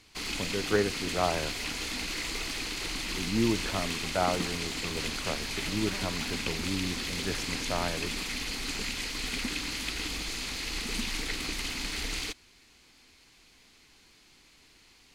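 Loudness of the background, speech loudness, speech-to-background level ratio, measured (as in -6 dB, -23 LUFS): -33.0 LUFS, -34.0 LUFS, -1.0 dB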